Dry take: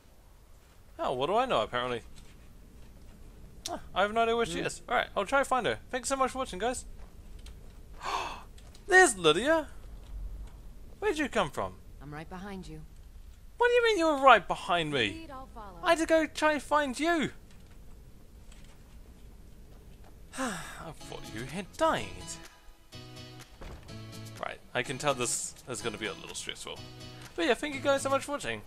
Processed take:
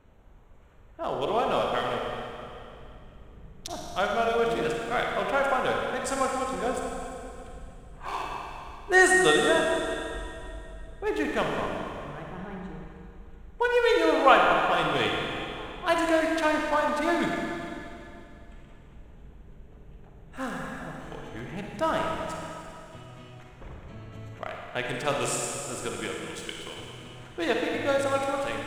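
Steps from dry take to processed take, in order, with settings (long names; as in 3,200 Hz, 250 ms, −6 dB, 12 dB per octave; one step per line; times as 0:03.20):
adaptive Wiener filter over 9 samples
four-comb reverb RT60 2.7 s, DRR −0.5 dB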